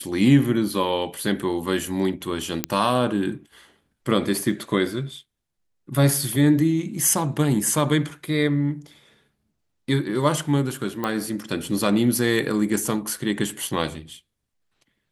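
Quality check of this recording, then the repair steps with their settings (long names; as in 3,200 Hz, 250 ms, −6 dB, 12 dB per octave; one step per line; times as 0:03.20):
0:02.64: click −4 dBFS
0:11.04: click −12 dBFS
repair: click removal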